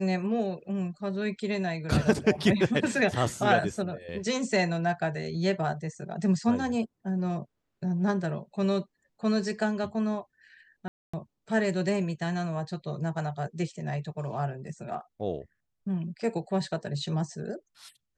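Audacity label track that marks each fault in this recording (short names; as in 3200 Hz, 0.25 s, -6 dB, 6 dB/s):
10.880000	11.130000	gap 0.255 s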